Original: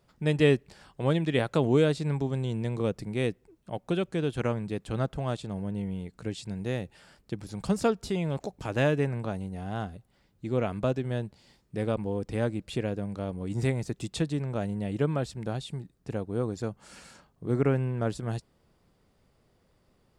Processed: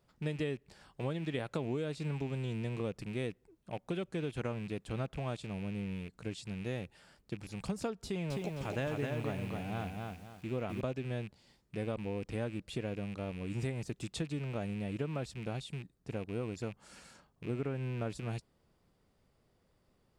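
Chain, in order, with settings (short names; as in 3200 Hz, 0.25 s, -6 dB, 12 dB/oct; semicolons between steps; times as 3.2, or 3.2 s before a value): rattling part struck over -38 dBFS, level -34 dBFS; compressor 12:1, threshold -26 dBFS, peak gain reduction 10.5 dB; 8.04–10.81 lo-fi delay 0.261 s, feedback 35%, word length 9-bit, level -3 dB; gain -5.5 dB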